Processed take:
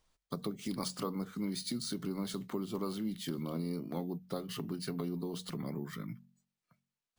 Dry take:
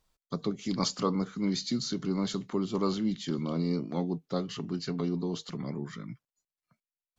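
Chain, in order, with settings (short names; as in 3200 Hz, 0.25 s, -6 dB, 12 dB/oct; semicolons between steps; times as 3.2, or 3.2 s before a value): compressor 3:1, threshold -35 dBFS, peak gain reduction 10 dB; de-hum 45.81 Hz, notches 5; sample-and-hold 3×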